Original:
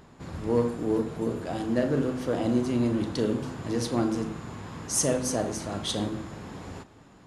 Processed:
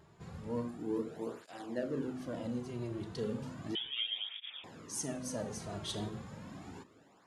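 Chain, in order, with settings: gain riding within 3 dB 0.5 s; 3.75–4.64 s: frequency inversion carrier 3.5 kHz; cancelling through-zero flanger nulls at 0.34 Hz, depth 4.1 ms; trim -8.5 dB

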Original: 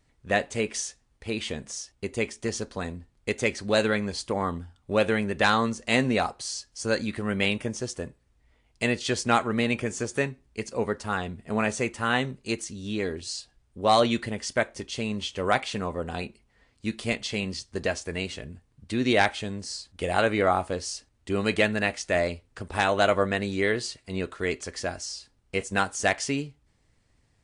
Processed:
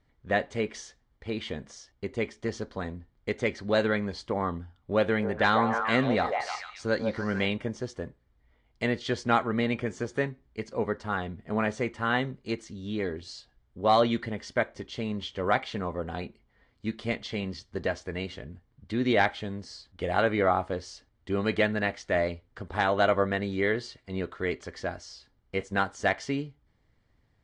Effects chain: low-pass 3.5 kHz 12 dB/octave; band-stop 2.6 kHz, Q 7; 5.05–7.43 s: repeats whose band climbs or falls 146 ms, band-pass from 690 Hz, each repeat 0.7 oct, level -1 dB; trim -1.5 dB

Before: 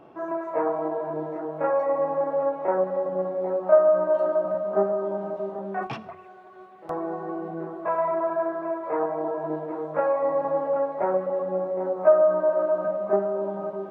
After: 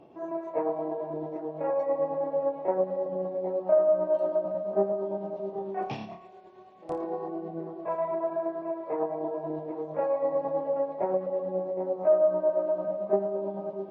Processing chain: peaking EQ 1.4 kHz -13 dB 0.84 oct; 5.50–7.28 s: flutter echo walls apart 4.8 m, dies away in 0.48 s; tremolo triangle 9 Hz, depth 45%; MP3 40 kbps 48 kHz

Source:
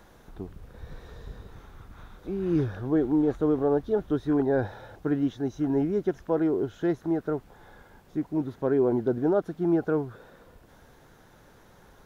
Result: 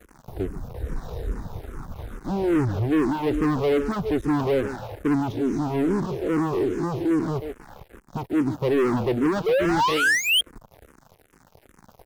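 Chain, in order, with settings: 5.32–7.36 s: spectral blur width 110 ms; peaking EQ 2.6 kHz -14 dB 1.6 oct; speakerphone echo 140 ms, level -12 dB; 9.46–10.41 s: painted sound rise 430–3300 Hz -23 dBFS; dynamic bell 720 Hz, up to -4 dB, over -42 dBFS, Q 1.5; waveshaping leveller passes 5; barber-pole phaser -2.4 Hz; trim -3 dB

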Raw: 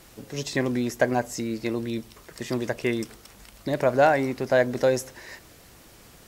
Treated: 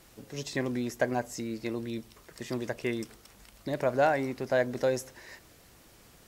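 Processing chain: trim -6 dB

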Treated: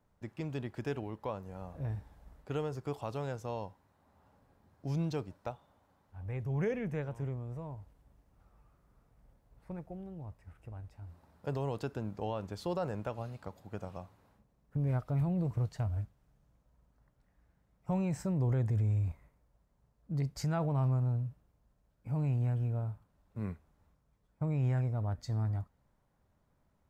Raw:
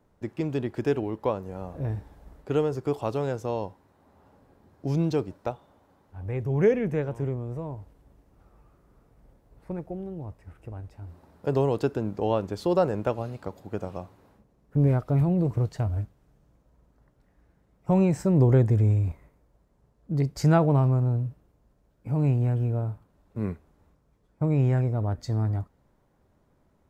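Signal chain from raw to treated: peaking EQ 360 Hz -7 dB 1.2 oct; peak limiter -19 dBFS, peak gain reduction 6 dB; trim -6 dB

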